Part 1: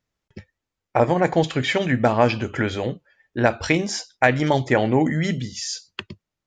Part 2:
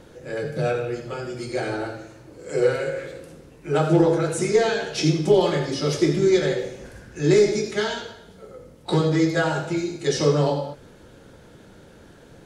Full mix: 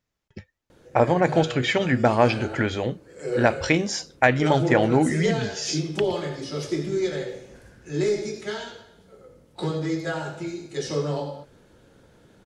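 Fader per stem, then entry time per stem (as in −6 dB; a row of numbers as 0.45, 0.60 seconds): −1.0, −7.0 decibels; 0.00, 0.70 seconds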